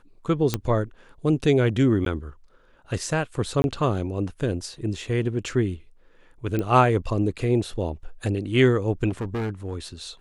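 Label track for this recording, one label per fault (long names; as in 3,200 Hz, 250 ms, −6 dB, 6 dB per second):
0.540000	0.540000	click −8 dBFS
2.050000	2.060000	drop-out
3.620000	3.640000	drop-out 21 ms
6.590000	6.590000	click −15 dBFS
9.090000	9.760000	clipping −24.5 dBFS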